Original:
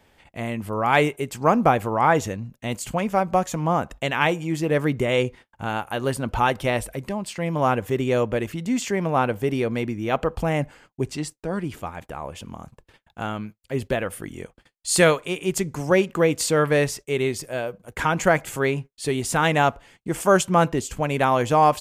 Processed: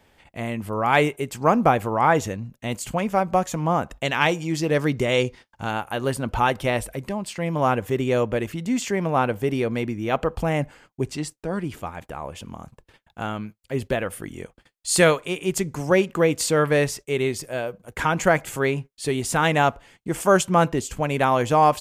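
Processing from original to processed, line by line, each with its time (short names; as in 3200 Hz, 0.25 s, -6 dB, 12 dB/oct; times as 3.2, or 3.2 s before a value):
4.05–5.71 bell 5100 Hz +8.5 dB 0.9 oct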